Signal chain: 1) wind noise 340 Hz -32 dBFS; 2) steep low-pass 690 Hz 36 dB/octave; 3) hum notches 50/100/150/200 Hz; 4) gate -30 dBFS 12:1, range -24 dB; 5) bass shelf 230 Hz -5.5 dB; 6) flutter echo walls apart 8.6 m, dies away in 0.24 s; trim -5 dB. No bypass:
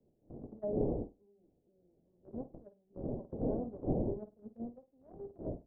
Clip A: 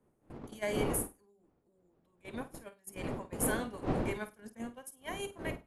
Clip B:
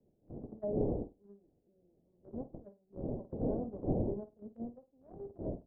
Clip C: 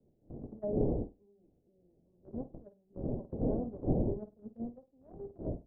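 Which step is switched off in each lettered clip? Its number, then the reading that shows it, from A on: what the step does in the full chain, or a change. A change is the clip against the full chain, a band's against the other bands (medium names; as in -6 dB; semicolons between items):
2, 1 kHz band +9.0 dB; 3, momentary loudness spread change -1 LU; 5, 125 Hz band +3.0 dB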